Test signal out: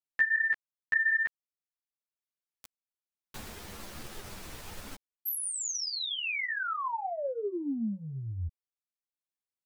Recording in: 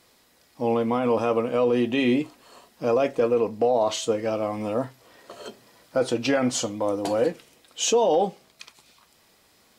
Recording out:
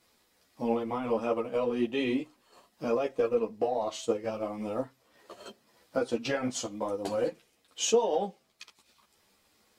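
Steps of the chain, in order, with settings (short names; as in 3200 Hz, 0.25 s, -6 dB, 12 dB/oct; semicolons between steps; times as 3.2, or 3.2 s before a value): transient shaper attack +4 dB, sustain -5 dB; ensemble effect; gain -4.5 dB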